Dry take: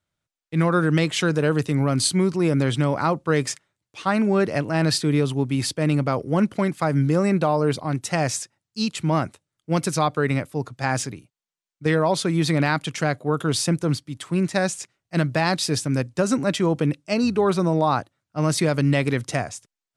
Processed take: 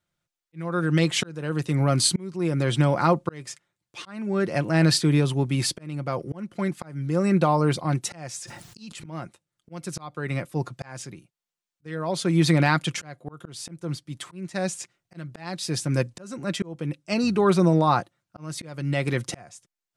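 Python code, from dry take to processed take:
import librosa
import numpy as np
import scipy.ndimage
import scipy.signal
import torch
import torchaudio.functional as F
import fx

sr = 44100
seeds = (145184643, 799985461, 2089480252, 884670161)

y = x + 0.41 * np.pad(x, (int(5.7 * sr / 1000.0), 0))[:len(x)]
y = fx.auto_swell(y, sr, attack_ms=648.0)
y = fx.sustainer(y, sr, db_per_s=26.0, at=(8.37, 9.06))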